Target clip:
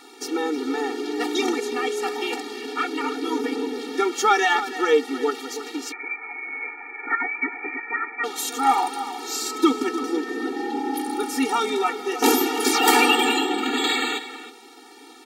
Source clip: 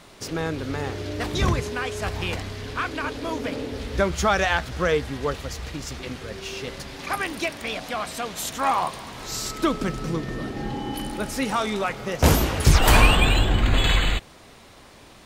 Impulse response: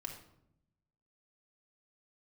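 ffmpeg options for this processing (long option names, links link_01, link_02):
-filter_complex "[0:a]asplit=2[link_01][link_02];[link_02]adelay=314.9,volume=-12dB,highshelf=frequency=4000:gain=-7.08[link_03];[link_01][link_03]amix=inputs=2:normalize=0,asettb=1/sr,asplit=3[link_04][link_05][link_06];[link_04]atrim=end=5.924[link_07];[link_05]atrim=start=5.92:end=8.24,asetpts=PTS-STARTPTS,afade=type=in:duration=0.004:curve=qsin,afade=type=out:start_time=2.316:duration=0.004:curve=qsin,lowpass=frequency=2200:width_type=q:width=0.5098,lowpass=frequency=2200:width_type=q:width=0.6013,lowpass=frequency=2200:width_type=q:width=0.9,lowpass=frequency=2200:width_type=q:width=2.563,afreqshift=-2600[link_08];[link_06]atrim=start=8.236[link_09];[link_07][link_08]acrossfade=duration=0.004:curve1=hsin:curve2=qsin[link_10];[link_10][link_09]acrossfade=duration=0.004:curve1=qsin:curve2=hsin,afftfilt=real='re*eq(mod(floor(b*sr/1024/240),2),1)':imag='im*eq(mod(floor(b*sr/1024/240),2),1)':win_size=1024:overlap=0.75,volume=5.5dB"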